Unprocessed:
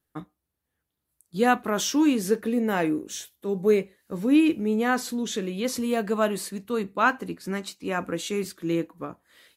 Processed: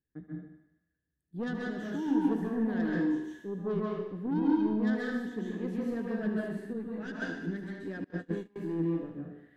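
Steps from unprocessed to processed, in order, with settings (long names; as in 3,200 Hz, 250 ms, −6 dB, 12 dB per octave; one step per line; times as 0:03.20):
drawn EQ curve 290 Hz 0 dB, 460 Hz −4 dB, 1,200 Hz −26 dB, 1,700 Hz +5 dB, 4,800 Hz −29 dB
soft clipping −23 dBFS, distortion −10 dB
feedback echo with a high-pass in the loop 75 ms, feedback 69%, high-pass 520 Hz, level −10.5 dB
dense smooth reverb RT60 0.68 s, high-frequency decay 0.9×, pre-delay 120 ms, DRR −4 dB
0:08.04–0:08.56: noise gate −27 dBFS, range −27 dB
parametric band 2,300 Hz −14.5 dB 0.64 octaves
0:01.47–0:02.06: downward compressor, threshold −25 dBFS, peak gain reduction 5 dB
0:06.73–0:07.22: string-ensemble chorus
level −6 dB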